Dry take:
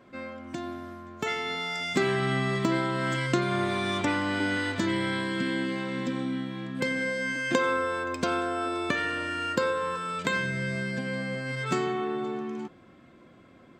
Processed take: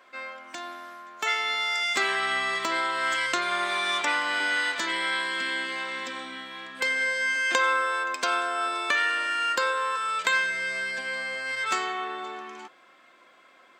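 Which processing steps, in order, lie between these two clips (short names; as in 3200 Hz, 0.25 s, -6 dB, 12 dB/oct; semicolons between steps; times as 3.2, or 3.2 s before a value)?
HPF 900 Hz 12 dB/oct; gain +6 dB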